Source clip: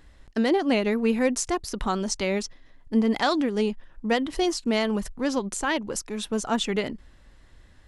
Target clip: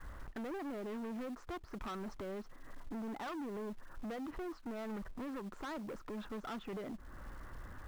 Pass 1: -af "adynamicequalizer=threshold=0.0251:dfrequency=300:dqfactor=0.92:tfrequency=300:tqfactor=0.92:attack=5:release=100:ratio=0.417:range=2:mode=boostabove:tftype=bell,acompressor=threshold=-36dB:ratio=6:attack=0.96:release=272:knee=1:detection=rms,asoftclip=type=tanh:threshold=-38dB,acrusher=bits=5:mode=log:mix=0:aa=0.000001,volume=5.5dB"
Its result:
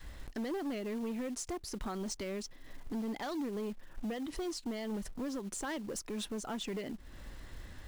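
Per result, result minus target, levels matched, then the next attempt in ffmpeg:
soft clipping: distortion −7 dB; 1,000 Hz band −4.0 dB
-af "adynamicequalizer=threshold=0.0251:dfrequency=300:dqfactor=0.92:tfrequency=300:tqfactor=0.92:attack=5:release=100:ratio=0.417:range=2:mode=boostabove:tftype=bell,acompressor=threshold=-36dB:ratio=6:attack=0.96:release=272:knee=1:detection=rms,asoftclip=type=tanh:threshold=-45.5dB,acrusher=bits=5:mode=log:mix=0:aa=0.000001,volume=5.5dB"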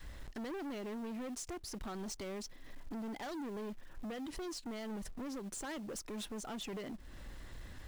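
1,000 Hz band −2.5 dB
-af "adynamicequalizer=threshold=0.0251:dfrequency=300:dqfactor=0.92:tfrequency=300:tqfactor=0.92:attack=5:release=100:ratio=0.417:range=2:mode=boostabove:tftype=bell,lowpass=frequency=1300:width_type=q:width=2.9,acompressor=threshold=-36dB:ratio=6:attack=0.96:release=272:knee=1:detection=rms,asoftclip=type=tanh:threshold=-45.5dB,acrusher=bits=5:mode=log:mix=0:aa=0.000001,volume=5.5dB"

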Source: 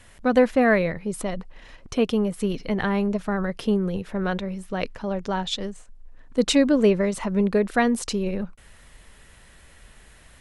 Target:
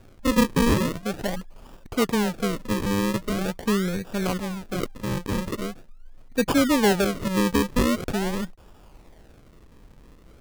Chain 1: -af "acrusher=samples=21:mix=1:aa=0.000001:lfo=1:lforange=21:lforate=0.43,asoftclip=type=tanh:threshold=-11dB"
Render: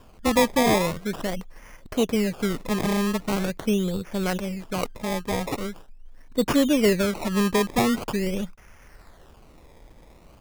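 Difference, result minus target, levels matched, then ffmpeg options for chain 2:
sample-and-hold swept by an LFO: distortion −7 dB
-af "acrusher=samples=42:mix=1:aa=0.000001:lfo=1:lforange=42:lforate=0.43,asoftclip=type=tanh:threshold=-11dB"

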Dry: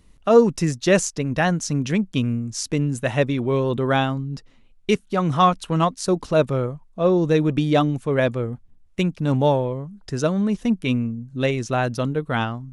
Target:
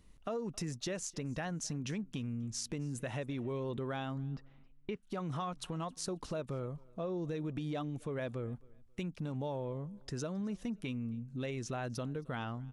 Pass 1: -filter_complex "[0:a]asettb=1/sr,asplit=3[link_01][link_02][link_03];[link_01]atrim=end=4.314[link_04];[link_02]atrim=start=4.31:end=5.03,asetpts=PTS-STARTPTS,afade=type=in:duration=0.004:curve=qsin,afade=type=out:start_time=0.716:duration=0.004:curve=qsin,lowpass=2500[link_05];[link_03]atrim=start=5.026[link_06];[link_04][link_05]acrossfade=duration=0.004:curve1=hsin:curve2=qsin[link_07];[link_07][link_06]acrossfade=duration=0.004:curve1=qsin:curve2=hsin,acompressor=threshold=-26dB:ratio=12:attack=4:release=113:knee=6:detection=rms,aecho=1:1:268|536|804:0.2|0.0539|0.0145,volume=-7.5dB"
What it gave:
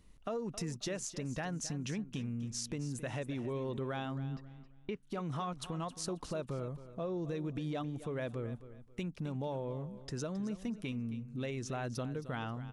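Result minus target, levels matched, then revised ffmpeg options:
echo-to-direct +11 dB
-filter_complex "[0:a]asettb=1/sr,asplit=3[link_01][link_02][link_03];[link_01]atrim=end=4.314[link_04];[link_02]atrim=start=4.31:end=5.03,asetpts=PTS-STARTPTS,afade=type=in:duration=0.004:curve=qsin,afade=type=out:start_time=0.716:duration=0.004:curve=qsin,lowpass=2500[link_05];[link_03]atrim=start=5.026[link_06];[link_04][link_05]acrossfade=duration=0.004:curve1=hsin:curve2=qsin[link_07];[link_07][link_06]acrossfade=duration=0.004:curve1=qsin:curve2=hsin,acompressor=threshold=-26dB:ratio=12:attack=4:release=113:knee=6:detection=rms,aecho=1:1:268|536:0.0562|0.0152,volume=-7.5dB"

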